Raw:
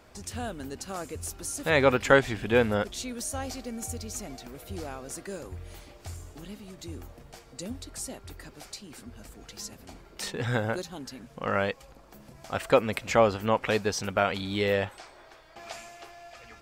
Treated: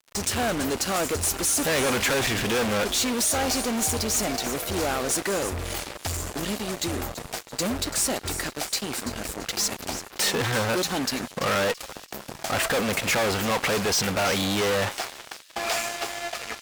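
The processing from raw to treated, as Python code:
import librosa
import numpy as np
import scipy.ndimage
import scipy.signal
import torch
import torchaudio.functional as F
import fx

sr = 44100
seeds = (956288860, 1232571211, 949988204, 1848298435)

y = fx.fuzz(x, sr, gain_db=44.0, gate_db=-48.0)
y = fx.low_shelf(y, sr, hz=210.0, db=-9.0)
y = fx.echo_wet_highpass(y, sr, ms=335, feedback_pct=37, hz=4100.0, wet_db=-10.5)
y = F.gain(torch.from_numpy(y), -7.5).numpy()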